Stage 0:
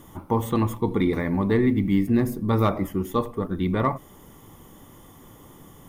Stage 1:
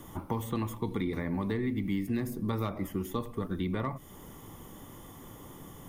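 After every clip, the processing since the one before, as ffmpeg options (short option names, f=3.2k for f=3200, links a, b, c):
-filter_complex "[0:a]acrossover=split=260|1700[a][b][c];[a]acompressor=threshold=-34dB:ratio=4[d];[b]acompressor=threshold=-37dB:ratio=4[e];[c]acompressor=threshold=-45dB:ratio=4[f];[d][e][f]amix=inputs=3:normalize=0"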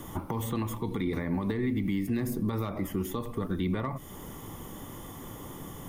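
-af "alimiter=level_in=3dB:limit=-24dB:level=0:latency=1:release=108,volume=-3dB,volume=5.5dB"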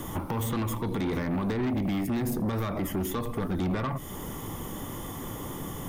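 -af "aeval=exprs='0.0891*(cos(1*acos(clip(val(0)/0.0891,-1,1)))-cos(1*PI/2))+0.0178*(cos(5*acos(clip(val(0)/0.0891,-1,1)))-cos(5*PI/2))':c=same"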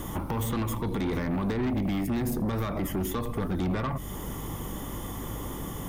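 -af "aeval=exprs='val(0)+0.0112*(sin(2*PI*50*n/s)+sin(2*PI*2*50*n/s)/2+sin(2*PI*3*50*n/s)/3+sin(2*PI*4*50*n/s)/4+sin(2*PI*5*50*n/s)/5)':c=same"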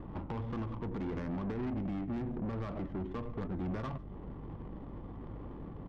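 -filter_complex "[0:a]aresample=8000,aresample=44100,adynamicsmooth=sensitivity=2.5:basefreq=560,asplit=2[a][b];[b]adelay=145.8,volume=-23dB,highshelf=f=4k:g=-3.28[c];[a][c]amix=inputs=2:normalize=0,volume=-8dB"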